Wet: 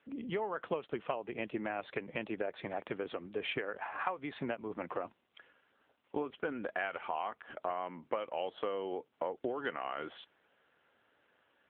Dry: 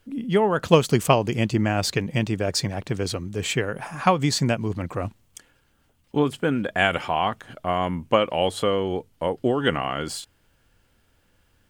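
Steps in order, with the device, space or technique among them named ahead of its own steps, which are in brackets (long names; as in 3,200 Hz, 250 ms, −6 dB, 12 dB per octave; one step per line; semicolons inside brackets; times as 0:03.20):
0:03.76–0:04.16: high-pass filter 530 Hz → 160 Hz 12 dB per octave
voicemail (band-pass filter 400–2,600 Hz; downward compressor 6 to 1, threshold −33 dBFS, peak gain reduction 19.5 dB; AMR narrowband 7.95 kbit/s 8,000 Hz)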